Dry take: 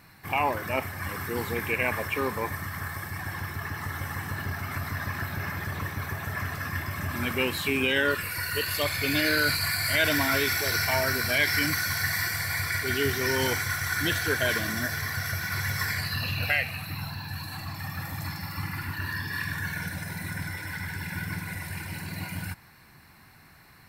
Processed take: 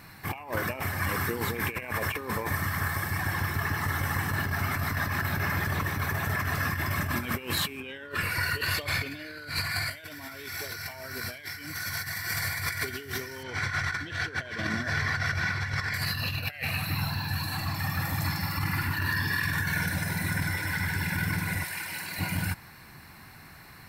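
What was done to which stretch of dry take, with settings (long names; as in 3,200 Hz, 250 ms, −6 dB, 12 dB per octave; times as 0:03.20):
0:07.80–0:09.91: low-pass filter 3,900 Hz 6 dB per octave
0:13.43–0:15.94: low-pass filter 4,100 Hz
0:21.64–0:22.19: high-pass filter 930 Hz 6 dB per octave
whole clip: compressor whose output falls as the input rises −32 dBFS, ratio −0.5; level +2 dB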